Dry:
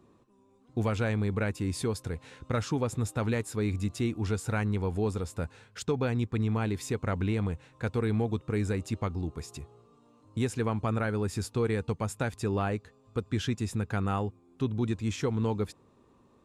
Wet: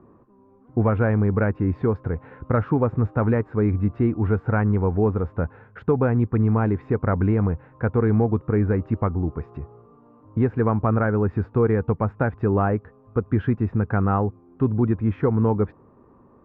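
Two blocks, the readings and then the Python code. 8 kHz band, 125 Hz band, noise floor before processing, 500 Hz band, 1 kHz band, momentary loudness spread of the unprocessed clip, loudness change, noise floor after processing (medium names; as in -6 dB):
under -35 dB, +9.0 dB, -63 dBFS, +9.0 dB, +8.5 dB, 8 LU, +8.5 dB, -54 dBFS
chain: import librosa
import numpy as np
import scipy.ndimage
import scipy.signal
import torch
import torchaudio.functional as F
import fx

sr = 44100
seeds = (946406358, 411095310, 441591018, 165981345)

y = scipy.signal.sosfilt(scipy.signal.butter(4, 1600.0, 'lowpass', fs=sr, output='sos'), x)
y = y * librosa.db_to_amplitude(9.0)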